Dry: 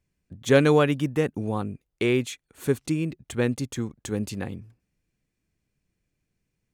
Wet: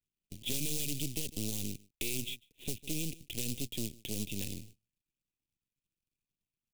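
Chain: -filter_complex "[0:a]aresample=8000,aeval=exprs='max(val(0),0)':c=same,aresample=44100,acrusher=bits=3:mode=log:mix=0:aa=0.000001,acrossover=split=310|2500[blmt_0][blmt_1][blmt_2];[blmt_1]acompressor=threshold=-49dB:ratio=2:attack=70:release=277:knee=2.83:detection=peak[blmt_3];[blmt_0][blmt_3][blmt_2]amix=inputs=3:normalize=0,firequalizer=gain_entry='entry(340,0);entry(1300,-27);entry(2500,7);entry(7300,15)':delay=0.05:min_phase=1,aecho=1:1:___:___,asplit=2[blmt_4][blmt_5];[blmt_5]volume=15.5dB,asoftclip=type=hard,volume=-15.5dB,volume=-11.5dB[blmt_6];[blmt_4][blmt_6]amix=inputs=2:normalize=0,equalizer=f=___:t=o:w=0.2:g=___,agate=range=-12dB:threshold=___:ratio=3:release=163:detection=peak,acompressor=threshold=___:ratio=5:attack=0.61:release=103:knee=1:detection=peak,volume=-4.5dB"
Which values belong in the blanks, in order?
149, 0.0668, 1300, -3, -49dB, -23dB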